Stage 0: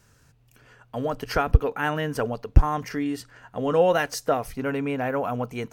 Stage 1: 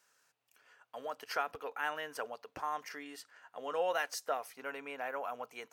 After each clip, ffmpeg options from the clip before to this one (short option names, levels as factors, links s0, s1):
-af "highpass=680,volume=0.376"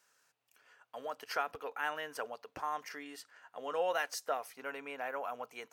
-af anull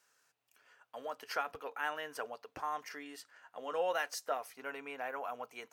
-af "flanger=delay=2.6:depth=1:regen=-80:speed=0.4:shape=sinusoidal,volume=1.5"